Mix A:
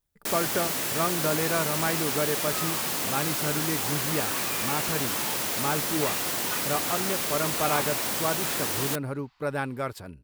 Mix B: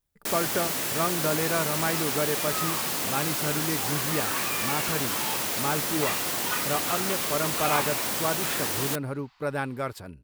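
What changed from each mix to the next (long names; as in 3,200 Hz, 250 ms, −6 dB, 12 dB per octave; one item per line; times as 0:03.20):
second sound +4.5 dB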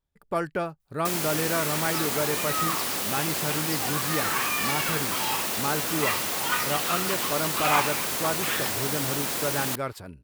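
first sound: entry +0.80 s
second sound +5.0 dB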